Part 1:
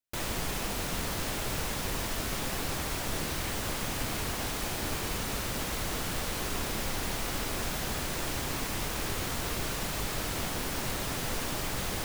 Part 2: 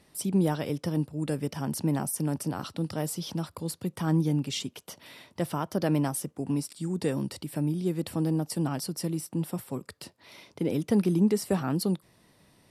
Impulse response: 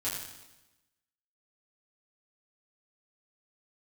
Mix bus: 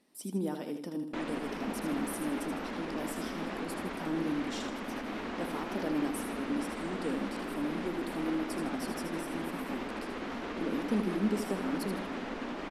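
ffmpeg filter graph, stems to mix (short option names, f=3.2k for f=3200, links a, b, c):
-filter_complex "[0:a]lowpass=2.3k,alimiter=level_in=3.5dB:limit=-24dB:level=0:latency=1:release=83,volume=-3.5dB,adelay=1000,volume=-1dB[a];[1:a]volume=-10.5dB,asplit=2[b][c];[c]volume=-7dB,aecho=0:1:79|158|237|316|395|474:1|0.42|0.176|0.0741|0.0311|0.0131[d];[a][b][d]amix=inputs=3:normalize=0,lowshelf=f=170:t=q:w=3:g=-11.5"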